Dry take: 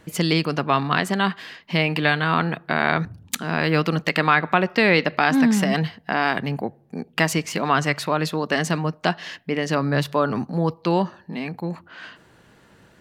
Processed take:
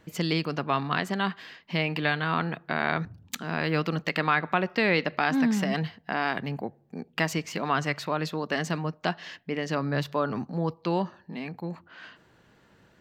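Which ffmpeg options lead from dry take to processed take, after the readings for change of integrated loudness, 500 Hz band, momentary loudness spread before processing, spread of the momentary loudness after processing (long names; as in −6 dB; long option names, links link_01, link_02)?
−6.5 dB, −6.5 dB, 12 LU, 12 LU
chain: -af "equalizer=frequency=10000:width=2.1:gain=-10.5,volume=-6.5dB"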